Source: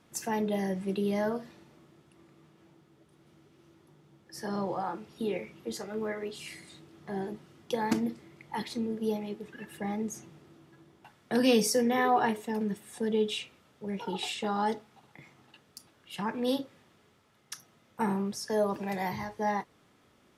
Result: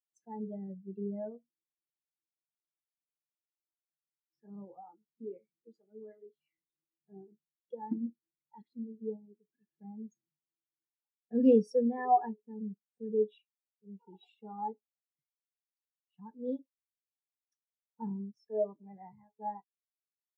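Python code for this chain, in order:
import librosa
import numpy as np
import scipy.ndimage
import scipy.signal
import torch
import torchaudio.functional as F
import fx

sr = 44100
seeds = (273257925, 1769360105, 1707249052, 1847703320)

y = fx.spectral_expand(x, sr, expansion=2.5)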